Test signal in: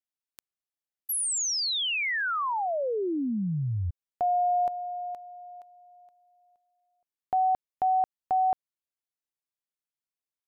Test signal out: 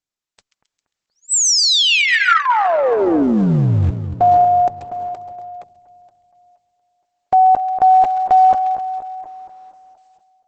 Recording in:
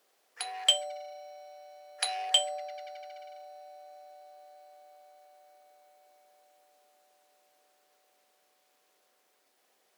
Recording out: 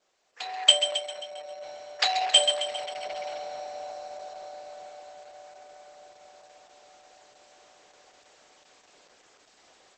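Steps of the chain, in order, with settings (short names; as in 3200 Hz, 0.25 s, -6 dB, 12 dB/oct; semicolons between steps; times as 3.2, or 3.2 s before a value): AGC gain up to 15 dB; split-band echo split 1700 Hz, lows 0.237 s, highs 0.134 s, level -10 dB; gain -1 dB; Opus 10 kbps 48000 Hz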